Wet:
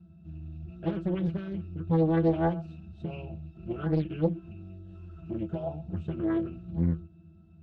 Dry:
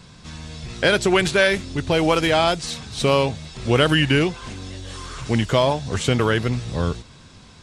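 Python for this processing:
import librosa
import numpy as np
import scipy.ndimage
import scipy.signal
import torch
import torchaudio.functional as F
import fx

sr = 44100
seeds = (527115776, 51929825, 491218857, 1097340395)

p1 = fx.peak_eq(x, sr, hz=64.0, db=7.0, octaves=2.1)
p2 = fx.octave_resonator(p1, sr, note='E', decay_s=0.2)
p3 = fx.small_body(p2, sr, hz=(200.0, 310.0, 560.0, 3700.0), ring_ms=60, db=14)
p4 = p3 + fx.echo_single(p3, sr, ms=124, db=-19.5, dry=0)
p5 = fx.doppler_dist(p4, sr, depth_ms=0.91)
y = p5 * 10.0 ** (-8.0 / 20.0)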